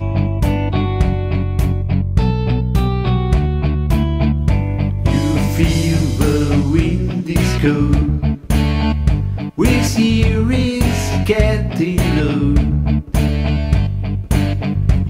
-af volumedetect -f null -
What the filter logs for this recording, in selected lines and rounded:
mean_volume: -14.9 dB
max_volume: -1.3 dB